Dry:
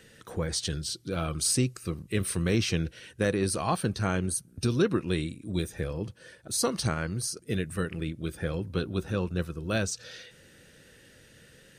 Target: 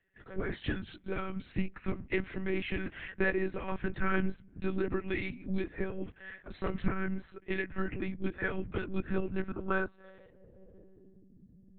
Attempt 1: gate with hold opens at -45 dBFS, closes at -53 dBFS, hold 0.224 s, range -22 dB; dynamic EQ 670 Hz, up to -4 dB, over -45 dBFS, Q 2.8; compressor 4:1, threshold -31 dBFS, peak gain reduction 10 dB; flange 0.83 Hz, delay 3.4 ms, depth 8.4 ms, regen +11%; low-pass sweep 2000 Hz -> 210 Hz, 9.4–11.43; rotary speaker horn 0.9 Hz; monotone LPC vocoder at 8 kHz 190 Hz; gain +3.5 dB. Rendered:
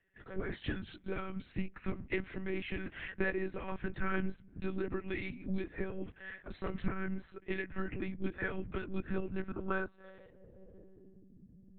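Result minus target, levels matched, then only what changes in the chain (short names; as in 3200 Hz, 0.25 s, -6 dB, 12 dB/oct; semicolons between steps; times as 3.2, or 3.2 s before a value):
compressor: peak gain reduction +4.5 dB
change: compressor 4:1, threshold -25 dBFS, peak gain reduction 5.5 dB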